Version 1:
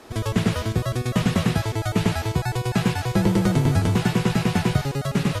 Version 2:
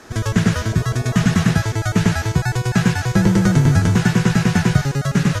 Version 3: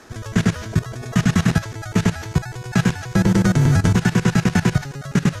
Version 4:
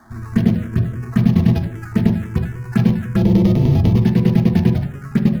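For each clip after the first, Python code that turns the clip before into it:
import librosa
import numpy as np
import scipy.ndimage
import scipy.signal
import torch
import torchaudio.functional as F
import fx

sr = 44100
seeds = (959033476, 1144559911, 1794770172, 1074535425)

y1 = fx.graphic_eq_15(x, sr, hz=(160, 1600, 6300), db=(4, 9, 9))
y1 = fx.spec_repair(y1, sr, seeds[0], start_s=0.7, length_s=0.8, low_hz=380.0, high_hz=970.0, source='both')
y1 = fx.low_shelf(y1, sr, hz=230.0, db=5.0)
y2 = fx.level_steps(y1, sr, step_db=16)
y2 = F.gain(torch.from_numpy(y2), 2.0).numpy()
y3 = scipy.signal.medfilt(y2, 15)
y3 = fx.env_phaser(y3, sr, low_hz=450.0, high_hz=1500.0, full_db=-13.0)
y3 = fx.rev_fdn(y3, sr, rt60_s=0.48, lf_ratio=1.4, hf_ratio=0.3, size_ms=26.0, drr_db=4.5)
y3 = F.gain(torch.from_numpy(y3), 1.0).numpy()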